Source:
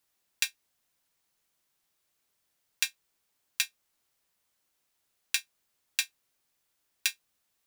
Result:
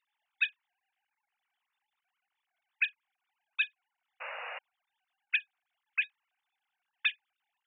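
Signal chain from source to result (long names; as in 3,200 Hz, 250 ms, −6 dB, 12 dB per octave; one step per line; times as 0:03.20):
three sine waves on the formant tracks
sound drawn into the spectrogram noise, 0:04.20–0:04.59, 470–2,900 Hz −41 dBFS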